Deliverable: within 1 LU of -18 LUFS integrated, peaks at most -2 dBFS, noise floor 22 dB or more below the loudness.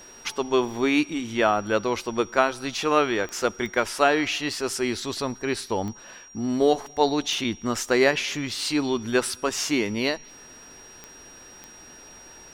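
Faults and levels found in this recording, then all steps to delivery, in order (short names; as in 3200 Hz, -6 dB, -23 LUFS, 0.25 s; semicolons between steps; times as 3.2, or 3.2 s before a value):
clicks 6; steady tone 5700 Hz; tone level -46 dBFS; loudness -24.5 LUFS; peak -3.5 dBFS; loudness target -18.0 LUFS
-> de-click; notch 5700 Hz, Q 30; gain +6.5 dB; limiter -2 dBFS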